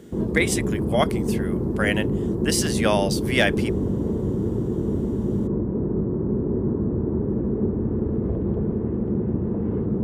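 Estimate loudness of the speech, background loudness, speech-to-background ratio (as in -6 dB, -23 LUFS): -25.0 LUFS, -25.0 LUFS, 0.0 dB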